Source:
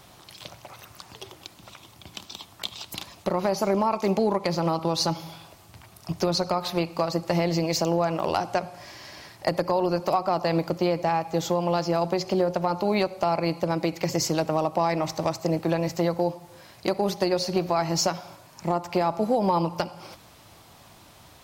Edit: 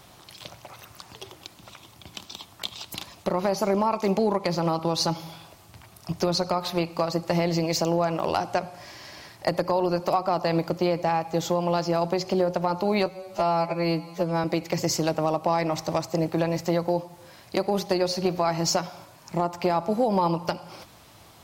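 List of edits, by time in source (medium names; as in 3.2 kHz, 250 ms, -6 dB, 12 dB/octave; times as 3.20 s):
13.06–13.75 s: stretch 2×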